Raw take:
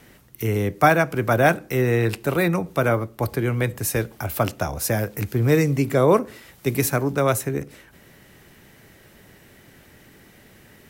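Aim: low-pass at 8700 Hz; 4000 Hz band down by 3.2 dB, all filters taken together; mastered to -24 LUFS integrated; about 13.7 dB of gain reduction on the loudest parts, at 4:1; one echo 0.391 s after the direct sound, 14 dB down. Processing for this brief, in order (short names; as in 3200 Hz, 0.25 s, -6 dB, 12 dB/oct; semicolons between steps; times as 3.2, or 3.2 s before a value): LPF 8700 Hz; bell 4000 Hz -4 dB; compressor 4:1, threshold -28 dBFS; echo 0.391 s -14 dB; gain +7.5 dB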